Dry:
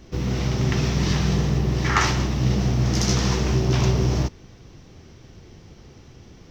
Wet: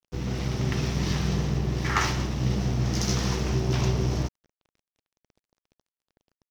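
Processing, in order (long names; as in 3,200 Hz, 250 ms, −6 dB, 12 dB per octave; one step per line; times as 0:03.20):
dead-zone distortion −37.5 dBFS
level −4 dB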